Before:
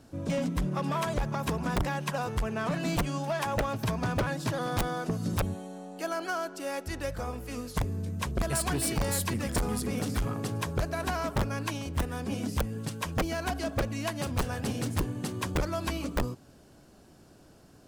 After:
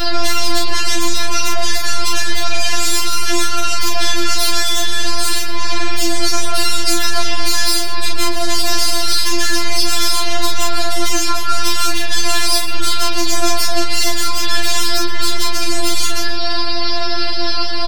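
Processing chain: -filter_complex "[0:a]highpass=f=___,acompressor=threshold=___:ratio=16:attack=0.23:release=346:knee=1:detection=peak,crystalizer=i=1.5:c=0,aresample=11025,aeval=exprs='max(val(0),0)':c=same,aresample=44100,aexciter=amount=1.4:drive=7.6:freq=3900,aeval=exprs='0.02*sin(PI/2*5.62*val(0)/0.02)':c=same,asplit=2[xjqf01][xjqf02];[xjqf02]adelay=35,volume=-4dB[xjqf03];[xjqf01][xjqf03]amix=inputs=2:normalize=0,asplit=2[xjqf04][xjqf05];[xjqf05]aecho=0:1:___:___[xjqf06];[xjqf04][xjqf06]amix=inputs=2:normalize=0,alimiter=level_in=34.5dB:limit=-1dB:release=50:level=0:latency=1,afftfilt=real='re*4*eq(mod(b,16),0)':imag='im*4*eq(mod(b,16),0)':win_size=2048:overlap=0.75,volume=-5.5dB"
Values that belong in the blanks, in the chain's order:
680, -40dB, 120, 0.106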